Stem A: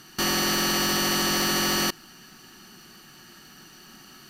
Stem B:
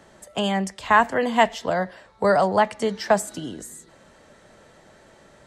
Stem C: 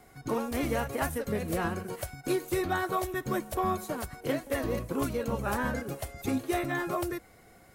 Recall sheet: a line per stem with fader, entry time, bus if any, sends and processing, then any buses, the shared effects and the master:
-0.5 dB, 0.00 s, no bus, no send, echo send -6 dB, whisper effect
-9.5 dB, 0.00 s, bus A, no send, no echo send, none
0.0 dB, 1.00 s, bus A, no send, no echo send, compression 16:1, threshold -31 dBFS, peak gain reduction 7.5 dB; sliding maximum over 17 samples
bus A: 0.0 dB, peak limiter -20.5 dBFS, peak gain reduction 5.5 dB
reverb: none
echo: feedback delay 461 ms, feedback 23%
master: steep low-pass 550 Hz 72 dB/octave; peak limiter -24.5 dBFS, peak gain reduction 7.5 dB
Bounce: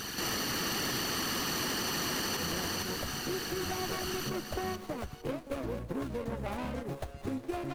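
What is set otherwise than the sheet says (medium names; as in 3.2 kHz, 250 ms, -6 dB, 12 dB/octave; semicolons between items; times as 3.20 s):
stem A -0.5 dB -> +10.0 dB; stem B: muted; master: missing steep low-pass 550 Hz 72 dB/octave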